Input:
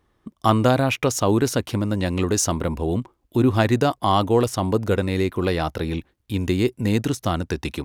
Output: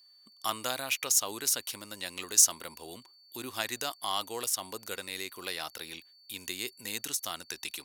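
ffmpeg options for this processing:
ffmpeg -i in.wav -af "aderivative,aeval=exprs='val(0)+0.001*sin(2*PI*4500*n/s)':channel_layout=same,volume=3dB" out.wav

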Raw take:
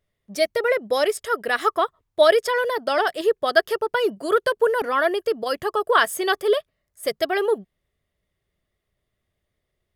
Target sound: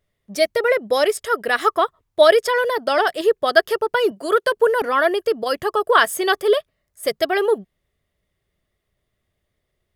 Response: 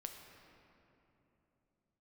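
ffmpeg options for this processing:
-filter_complex "[0:a]asettb=1/sr,asplit=3[link_01][link_02][link_03];[link_01]atrim=end=4.114[link_04];[link_02]atrim=start=4.11:end=4.52,asetpts=PTS-STARTPTS,afade=type=in:duration=0.004:curve=qsin,afade=type=out:start_time=0.406:duration=0.004:curve=qsin,highpass=frequency=280:poles=1[link_05];[link_03]atrim=start=4.516[link_06];[link_04][link_05]acrossfade=duration=0.004:curve1=hsin:curve2=qsin[link_07];[link_07][link_06]acrossfade=duration=0.004:curve1=qsin:curve2=hsin,volume=3dB"

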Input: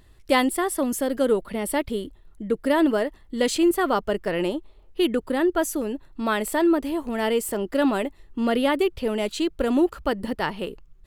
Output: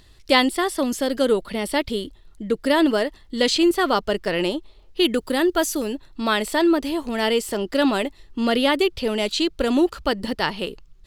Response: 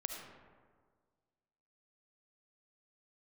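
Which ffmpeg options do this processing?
-filter_complex "[0:a]equalizer=frequency=4600:width_type=o:width=1.5:gain=10.5,acrossover=split=5100[link_01][link_02];[link_02]acompressor=threshold=-33dB:ratio=4:attack=1:release=60[link_03];[link_01][link_03]amix=inputs=2:normalize=0,asettb=1/sr,asplit=3[link_04][link_05][link_06];[link_04]atrim=end=5.054[link_07];[link_05]atrim=start=5.05:end=5.95,asetpts=PTS-STARTPTS,afade=type=in:duration=0.004:curve=qsin,afade=type=out:start_time=0.896:duration=0.004:curve=qsin,highshelf=frequency=8400:gain=10[link_08];[link_06]atrim=start=5.946[link_09];[link_07][link_08]acrossfade=duration=0.004:curve1=hsin:curve2=qsin[link_10];[link_10][link_09]acrossfade=duration=0.004:curve1=qsin:curve2=hsin,volume=1.5dB"

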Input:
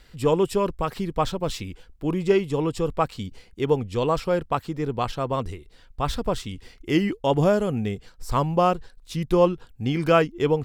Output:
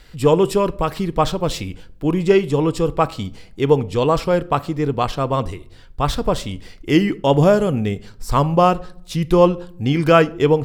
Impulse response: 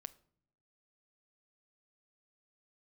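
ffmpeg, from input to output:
-filter_complex "[0:a]asplit=2[link_01][link_02];[1:a]atrim=start_sample=2205[link_03];[link_02][link_03]afir=irnorm=-1:irlink=0,volume=18dB[link_04];[link_01][link_04]amix=inputs=2:normalize=0,volume=-8.5dB"

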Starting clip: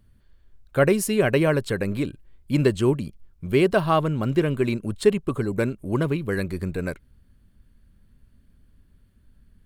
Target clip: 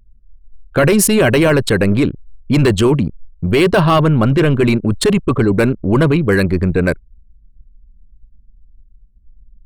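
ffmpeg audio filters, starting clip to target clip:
ffmpeg -i in.wav -af "anlmdn=3.98,apsyclip=22dB,volume=-7dB" out.wav

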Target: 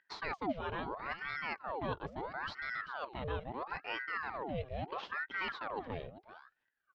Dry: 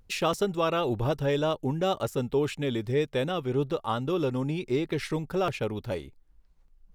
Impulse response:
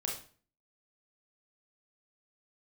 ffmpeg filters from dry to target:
-filter_complex "[0:a]agate=range=-6dB:threshold=-47dB:ratio=16:detection=peak,lowshelf=frequency=240:gain=7,areverse,acompressor=threshold=-33dB:ratio=10,areverse,highpass=160,equalizer=frequency=190:width_type=q:width=4:gain=9,equalizer=frequency=480:width_type=q:width=4:gain=-9,equalizer=frequency=790:width_type=q:width=4:gain=4,equalizer=frequency=1500:width_type=q:width=4:gain=5,lowpass=frequency=3500:width=0.5412,lowpass=frequency=3500:width=1.3066,asplit=2[link_01][link_02];[link_02]aecho=0:1:390:0.211[link_03];[link_01][link_03]amix=inputs=2:normalize=0,aeval=exprs='val(0)*sin(2*PI*1000*n/s+1000*0.75/0.75*sin(2*PI*0.75*n/s))':channel_layout=same"

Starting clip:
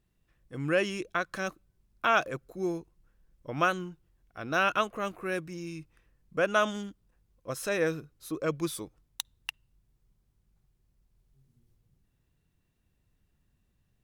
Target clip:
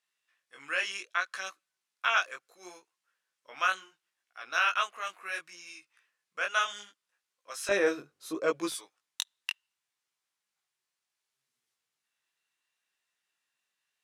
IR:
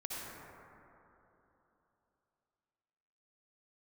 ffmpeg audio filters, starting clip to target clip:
-af "asetnsamples=nb_out_samples=441:pad=0,asendcmd='7.69 highpass f 380;8.72 highpass f 1300',highpass=1400,flanger=delay=15.5:depth=6.1:speed=0.69,lowpass=10000,volume=6dB"

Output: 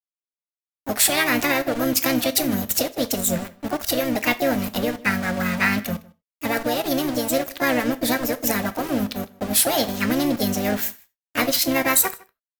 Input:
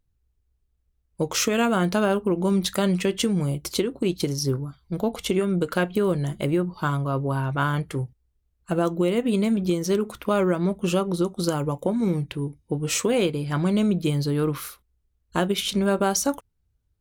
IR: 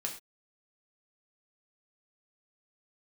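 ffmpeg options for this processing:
-filter_complex "[0:a]equalizer=frequency=250:width_type=o:width=0.67:gain=-11,equalizer=frequency=630:width_type=o:width=0.67:gain=-9,equalizer=frequency=1600:width_type=o:width=0.67:gain=4,equalizer=frequency=10000:width_type=o:width=0.67:gain=12,aeval=exprs='val(0)*gte(abs(val(0)),0.0251)':channel_layout=same,asplit=2[link_01][link_02];[link_02]adelay=209.9,volume=-23dB,highshelf=frequency=4000:gain=-4.72[link_03];[link_01][link_03]amix=inputs=2:normalize=0,asplit=3[link_04][link_05][link_06];[link_05]asetrate=22050,aresample=44100,atempo=2,volume=-12dB[link_07];[link_06]asetrate=55563,aresample=44100,atempo=0.793701,volume=-5dB[link_08];[link_04][link_07][link_08]amix=inputs=3:normalize=0,asplit=2[link_09][link_10];[1:a]atrim=start_sample=2205[link_11];[link_10][link_11]afir=irnorm=-1:irlink=0,volume=-6dB[link_12];[link_09][link_12]amix=inputs=2:normalize=0,asetrate=59535,aresample=44100"

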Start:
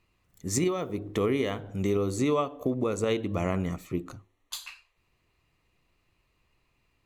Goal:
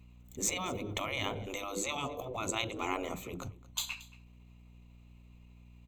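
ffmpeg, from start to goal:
ffmpeg -i in.wav -filter_complex "[0:a]aeval=exprs='val(0)+0.00126*(sin(2*PI*60*n/s)+sin(2*PI*2*60*n/s)/2+sin(2*PI*3*60*n/s)/3+sin(2*PI*4*60*n/s)/4+sin(2*PI*5*60*n/s)/5)':channel_layout=same,superequalizer=6b=0.501:10b=0.562:11b=0.355:14b=0.398:16b=0.316,atempo=1.2,afftfilt=real='re*lt(hypot(re,im),0.0891)':imag='im*lt(hypot(re,im),0.0891)':win_size=1024:overlap=0.75,asplit=2[link_01][link_02];[link_02]aecho=0:1:227:0.0944[link_03];[link_01][link_03]amix=inputs=2:normalize=0,volume=4dB" out.wav

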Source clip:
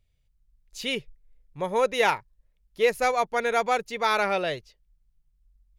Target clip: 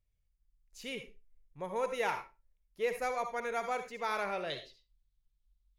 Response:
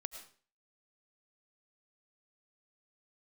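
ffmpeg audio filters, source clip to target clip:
-filter_complex "[0:a]asetnsamples=nb_out_samples=441:pad=0,asendcmd='4.5 equalizer g 11.5',equalizer=frequency=3700:width_type=o:width=0.77:gain=-5.5[link_01];[1:a]atrim=start_sample=2205,asetrate=74970,aresample=44100[link_02];[link_01][link_02]afir=irnorm=-1:irlink=0,volume=-3dB"

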